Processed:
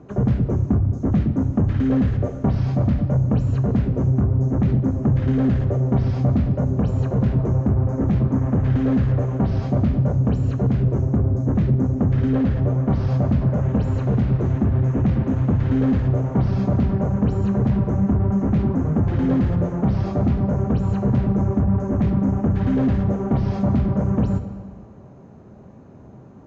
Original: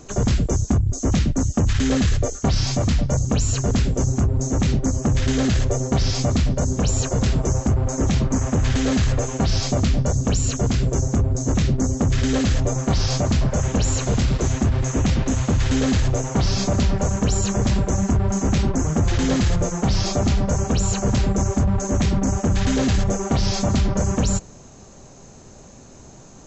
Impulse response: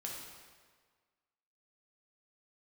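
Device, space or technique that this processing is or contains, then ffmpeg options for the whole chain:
saturated reverb return: -filter_complex "[0:a]highpass=110,asplit=2[link_01][link_02];[1:a]atrim=start_sample=2205[link_03];[link_02][link_03]afir=irnorm=-1:irlink=0,asoftclip=type=tanh:threshold=-18.5dB,volume=-1.5dB[link_04];[link_01][link_04]amix=inputs=2:normalize=0,lowpass=1500,asettb=1/sr,asplit=3[link_05][link_06][link_07];[link_05]atrim=end=12.294[link_08];[link_06]atrim=start=12.29:end=12.9,asetpts=PTS-STARTPTS,afade=type=in:duration=0.004:curve=qsin,afade=type=out:start_time=0.606:duration=0.004:curve=qsin,lowpass=5800[link_09];[link_07]atrim=start=12.896[link_10];[link_08][link_09]acrossfade=duration=0.004:curve1=hsin:curve2=qsin[link_11];[link_11][link_10]acrossfade=duration=0.004:curve1=qsin:curve2=hsin,lowshelf=frequency=250:gain=10,volume=-6.5dB"

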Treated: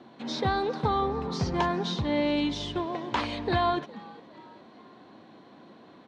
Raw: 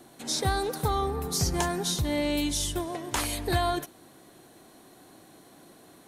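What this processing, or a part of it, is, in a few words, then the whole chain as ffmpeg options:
frequency-shifting delay pedal into a guitar cabinet: -filter_complex "[0:a]asplit=4[link_01][link_02][link_03][link_04];[link_02]adelay=411,afreqshift=120,volume=-22.5dB[link_05];[link_03]adelay=822,afreqshift=240,volume=-29.2dB[link_06];[link_04]adelay=1233,afreqshift=360,volume=-36dB[link_07];[link_01][link_05][link_06][link_07]amix=inputs=4:normalize=0,highpass=90,equalizer=frequency=220:width_type=q:width=4:gain=8,equalizer=frequency=520:width_type=q:width=4:gain=3,equalizer=frequency=1000:width_type=q:width=4:gain=6,lowpass=frequency=4100:width=0.5412,lowpass=frequency=4100:width=1.3066"

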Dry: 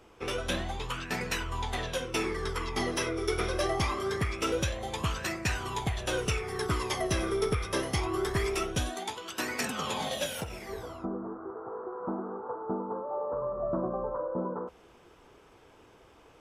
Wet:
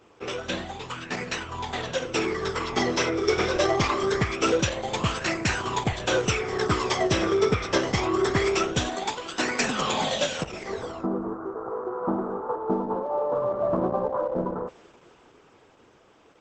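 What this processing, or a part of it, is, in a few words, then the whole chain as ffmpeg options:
video call: -filter_complex "[0:a]asettb=1/sr,asplit=3[link_01][link_02][link_03];[link_01]atrim=end=1.164[link_04];[link_02]atrim=start=1.16:end=1.93,asetpts=PTS-STARTPTS,afade=type=in:duration=0.004:curve=qsin,afade=type=out:start_time=0.766:duration=0.004:curve=qsin,acrossover=split=8300[link_05][link_06];[link_06]acompressor=threshold=-56dB:ratio=4:attack=1:release=60[link_07];[link_05][link_07]amix=inputs=2:normalize=0[link_08];[link_03]atrim=start=1.926[link_09];[link_04][link_08]acrossfade=duration=0.004:curve1=hsin:curve2=qsin[link_10];[link_10][link_09]acrossfade=duration=0.004:curve1=qsin:curve2=hsin,asettb=1/sr,asplit=3[link_11][link_12][link_13];[link_11]atrim=end=12.564[link_14];[link_12]atrim=start=12.56:end=13.52,asetpts=PTS-STARTPTS,afade=type=in:duration=0.004:curve=qsin,afade=type=out:start_time=0.956:duration=0.004:curve=qsin,aemphasis=mode=reproduction:type=75kf[link_15];[link_13]atrim=start=13.516[link_16];[link_14][link_15]acrossfade=duration=0.004:curve1=hsin:curve2=qsin[link_17];[link_17][link_16]acrossfade=duration=0.004:curve1=qsin:curve2=hsin,highpass=110,dynaudnorm=framelen=320:gausssize=13:maxgain=6dB,volume=2dB" -ar 48000 -c:a libopus -b:a 12k

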